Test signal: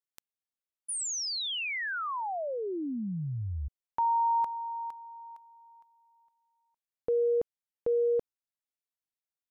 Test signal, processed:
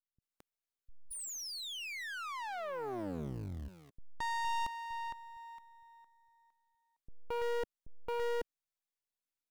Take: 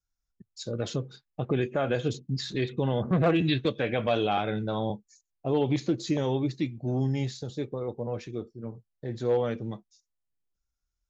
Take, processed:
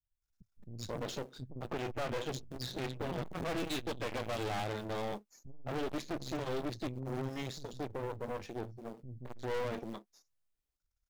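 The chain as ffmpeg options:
ffmpeg -i in.wav -filter_complex "[0:a]aeval=exprs='if(lt(val(0),0),0.251*val(0),val(0))':channel_layout=same,asplit=2[link_01][link_02];[link_02]acrusher=bits=5:mode=log:mix=0:aa=0.000001,volume=-6.5dB[link_03];[link_01][link_03]amix=inputs=2:normalize=0,acrossover=split=200[link_04][link_05];[link_05]adelay=220[link_06];[link_04][link_06]amix=inputs=2:normalize=0,aeval=exprs='(tanh(63.1*val(0)+0.8)-tanh(0.8))/63.1':channel_layout=same,volume=2.5dB" out.wav

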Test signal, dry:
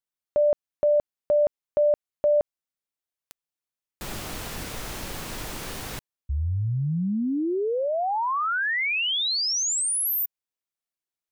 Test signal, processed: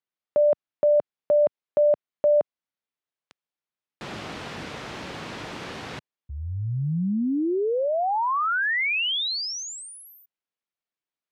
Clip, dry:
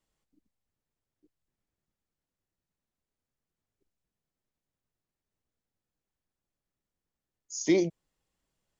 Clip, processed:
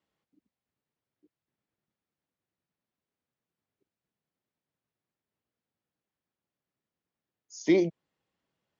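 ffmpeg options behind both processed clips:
ffmpeg -i in.wav -af "highpass=120,lowpass=3800,volume=1.5dB" out.wav

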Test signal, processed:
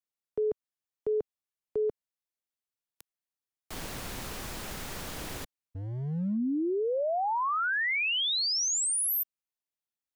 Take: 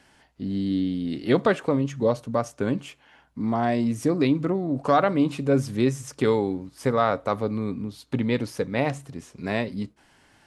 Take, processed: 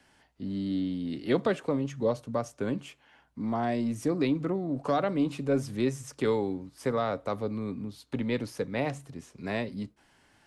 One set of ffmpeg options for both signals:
ffmpeg -i in.wav -filter_complex "[0:a]acrossover=split=170|700|2200[link_01][link_02][link_03][link_04];[link_01]volume=33.5dB,asoftclip=hard,volume=-33.5dB[link_05];[link_03]alimiter=limit=-22dB:level=0:latency=1:release=385[link_06];[link_05][link_02][link_06][link_04]amix=inputs=4:normalize=0,volume=-5dB" out.wav

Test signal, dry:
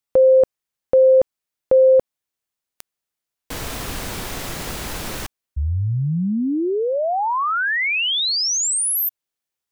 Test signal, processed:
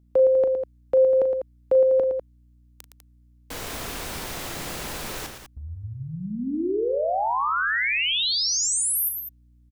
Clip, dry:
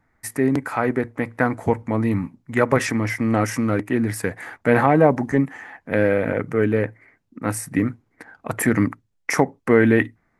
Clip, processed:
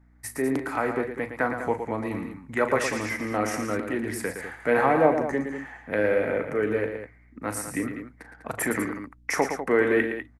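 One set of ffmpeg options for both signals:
ffmpeg -i in.wav -filter_complex "[0:a]acrossover=split=290|810[link_01][link_02][link_03];[link_01]acompressor=threshold=-31dB:ratio=6:attack=0.13:release=257:detection=peak[link_04];[link_04][link_02][link_03]amix=inputs=3:normalize=0,aeval=exprs='val(0)+0.00251*(sin(2*PI*60*n/s)+sin(2*PI*2*60*n/s)/2+sin(2*PI*3*60*n/s)/3+sin(2*PI*4*60*n/s)/4+sin(2*PI*5*60*n/s)/5)':channel_layout=same,aecho=1:1:37.9|113.7|198.3:0.282|0.398|0.316,volume=-4.5dB" out.wav

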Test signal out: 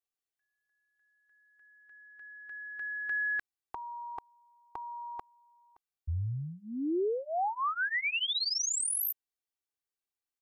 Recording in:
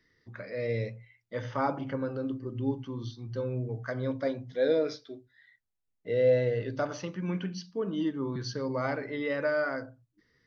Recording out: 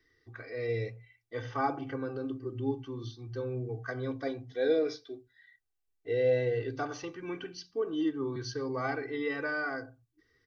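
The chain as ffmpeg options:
ffmpeg -i in.wav -af "aecho=1:1:2.6:0.96,volume=-4dB" out.wav

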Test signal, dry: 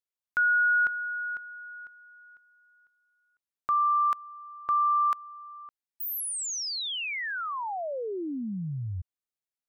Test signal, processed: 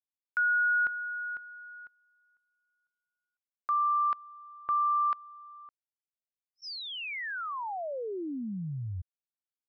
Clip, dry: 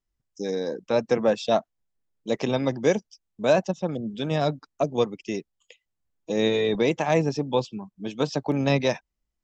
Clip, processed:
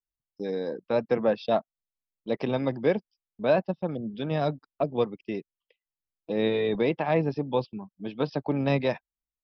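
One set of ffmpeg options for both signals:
ffmpeg -i in.wav -af "aresample=11025,aresample=44100,equalizer=frequency=3900:width_type=o:width=1.1:gain=-4.5,agate=range=-14dB:threshold=-46dB:ratio=3:release=20:detection=peak,volume=-2.5dB" out.wav

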